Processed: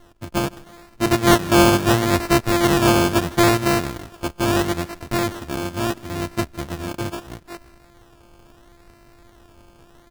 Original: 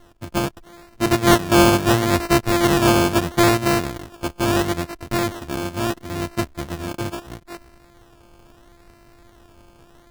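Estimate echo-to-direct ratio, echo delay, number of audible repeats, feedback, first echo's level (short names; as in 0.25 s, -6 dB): -21.5 dB, 0.159 s, 2, 36%, -22.0 dB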